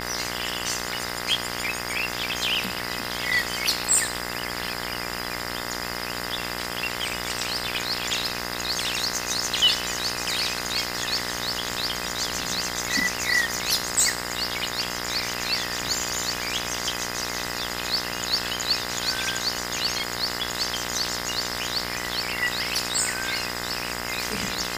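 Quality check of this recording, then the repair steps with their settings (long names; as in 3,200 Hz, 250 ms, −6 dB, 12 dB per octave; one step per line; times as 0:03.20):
mains buzz 60 Hz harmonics 35 −33 dBFS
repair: hum removal 60 Hz, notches 35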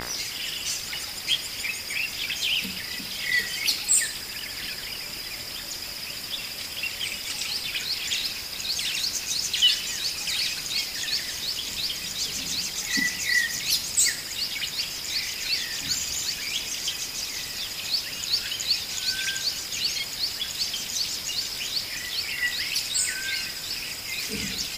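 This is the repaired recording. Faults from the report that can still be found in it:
none of them is left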